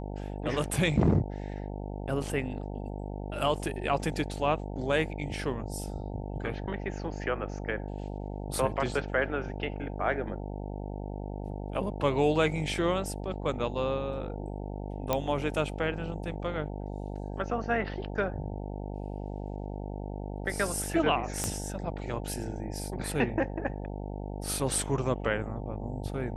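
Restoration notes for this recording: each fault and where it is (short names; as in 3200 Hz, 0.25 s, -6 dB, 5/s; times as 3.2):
buzz 50 Hz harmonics 18 -37 dBFS
15.13 pop -12 dBFS
21.44 pop -15 dBFS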